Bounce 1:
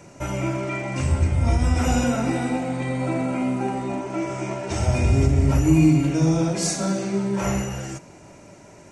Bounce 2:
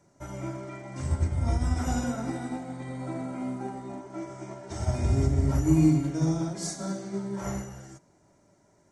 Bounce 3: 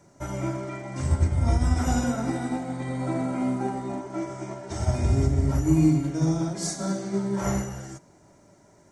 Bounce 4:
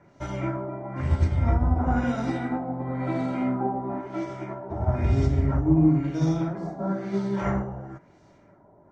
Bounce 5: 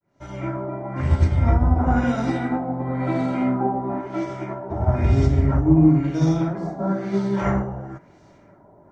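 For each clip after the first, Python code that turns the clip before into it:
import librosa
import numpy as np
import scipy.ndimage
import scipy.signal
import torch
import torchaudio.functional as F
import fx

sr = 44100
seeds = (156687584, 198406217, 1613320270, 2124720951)

y1 = fx.peak_eq(x, sr, hz=2600.0, db=-14.5, octaves=0.3)
y1 = fx.notch(y1, sr, hz=500.0, q=12.0)
y1 = fx.upward_expand(y1, sr, threshold_db=-38.0, expansion=1.5)
y1 = y1 * 10.0 ** (-4.0 / 20.0)
y2 = fx.rider(y1, sr, range_db=4, speed_s=2.0)
y2 = y2 * 10.0 ** (3.0 / 20.0)
y3 = fx.filter_lfo_lowpass(y2, sr, shape='sine', hz=1.0, low_hz=830.0, high_hz=4000.0, q=1.5)
y4 = fx.fade_in_head(y3, sr, length_s=0.72)
y4 = y4 * 10.0 ** (4.5 / 20.0)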